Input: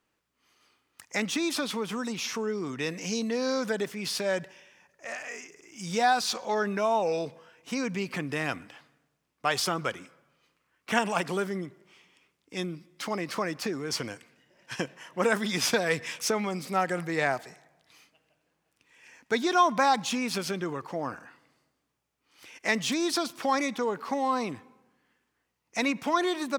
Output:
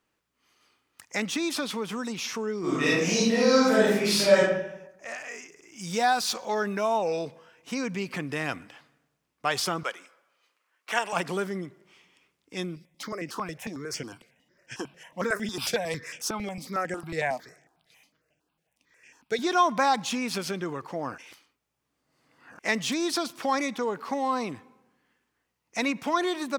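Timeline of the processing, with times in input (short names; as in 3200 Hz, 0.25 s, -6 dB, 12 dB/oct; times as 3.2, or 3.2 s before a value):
2.6–4.42 reverb throw, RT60 0.87 s, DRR -8.5 dB
5.81–6.98 high shelf 11000 Hz +8.5 dB
9.83–11.13 HPF 540 Hz
12.76–19.39 step phaser 11 Hz 270–4000 Hz
21.18–22.59 reverse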